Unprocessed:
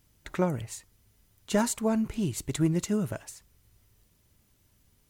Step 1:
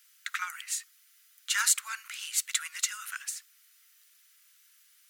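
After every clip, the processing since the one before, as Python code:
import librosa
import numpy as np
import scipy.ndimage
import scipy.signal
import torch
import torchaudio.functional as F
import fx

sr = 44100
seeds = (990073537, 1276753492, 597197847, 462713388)

y = scipy.signal.sosfilt(scipy.signal.butter(8, 1300.0, 'highpass', fs=sr, output='sos'), x)
y = F.gain(torch.from_numpy(y), 8.5).numpy()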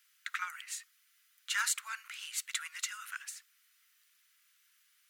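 y = fx.bass_treble(x, sr, bass_db=13, treble_db=-6)
y = F.gain(torch.from_numpy(y), -3.0).numpy()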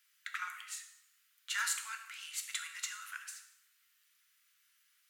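y = fx.rev_plate(x, sr, seeds[0], rt60_s=0.83, hf_ratio=0.9, predelay_ms=0, drr_db=4.5)
y = F.gain(torch.from_numpy(y), -3.5).numpy()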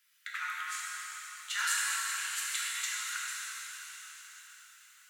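y = fx.rev_plate(x, sr, seeds[1], rt60_s=4.7, hf_ratio=1.0, predelay_ms=0, drr_db=-5.5)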